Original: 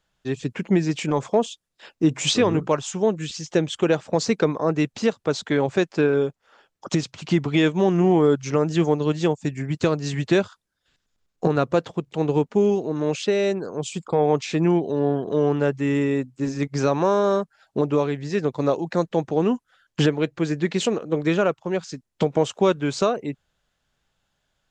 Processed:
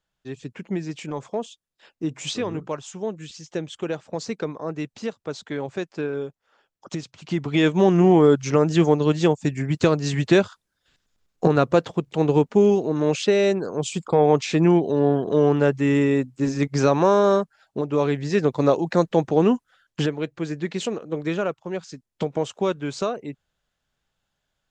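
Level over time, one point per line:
0:07.18 −8 dB
0:07.75 +2.5 dB
0:17.34 +2.5 dB
0:17.88 −5 dB
0:18.06 +3 dB
0:19.48 +3 dB
0:20.07 −4.5 dB

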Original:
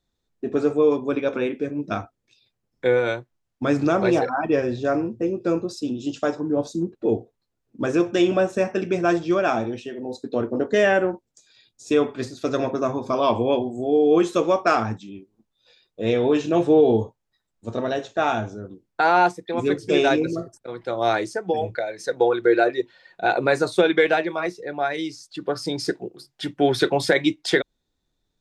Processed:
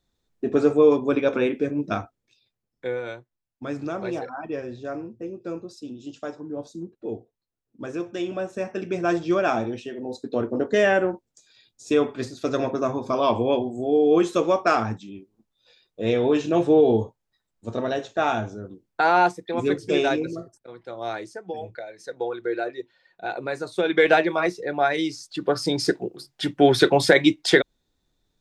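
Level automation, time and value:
0:01.76 +2 dB
0:02.97 −10 dB
0:08.30 −10 dB
0:09.28 −1 dB
0:19.76 −1 dB
0:20.85 −9.5 dB
0:23.69 −9.5 dB
0:24.11 +3 dB

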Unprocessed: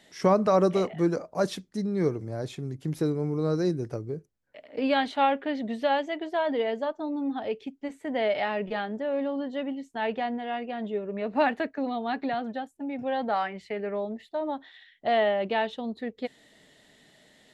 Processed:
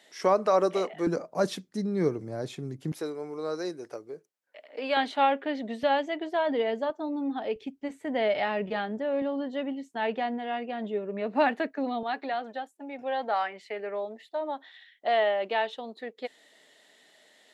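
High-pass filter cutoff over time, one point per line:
380 Hz
from 0:01.07 140 Hz
from 0:02.92 520 Hz
from 0:04.97 250 Hz
from 0:05.83 93 Hz
from 0:06.90 200 Hz
from 0:07.56 49 Hz
from 0:09.22 170 Hz
from 0:12.03 430 Hz

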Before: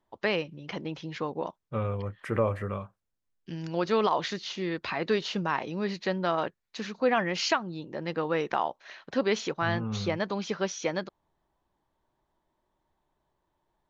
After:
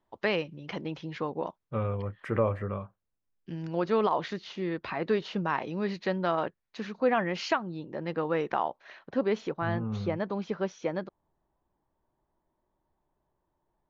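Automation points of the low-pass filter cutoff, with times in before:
low-pass filter 6 dB per octave
4,900 Hz
from 0:00.98 3,000 Hz
from 0:02.56 1,600 Hz
from 0:05.46 3,000 Hz
from 0:06.39 2,000 Hz
from 0:08.99 1,000 Hz

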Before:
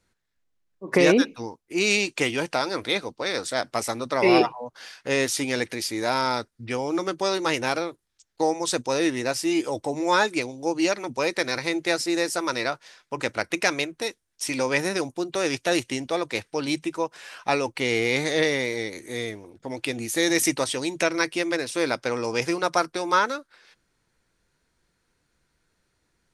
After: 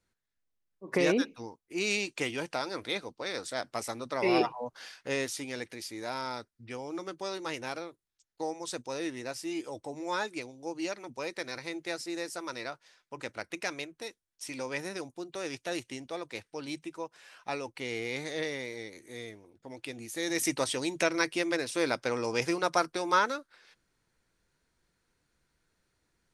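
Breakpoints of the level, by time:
0:04.34 −8.5 dB
0:04.64 −1.5 dB
0:05.43 −12 dB
0:20.18 −12 dB
0:20.63 −4.5 dB

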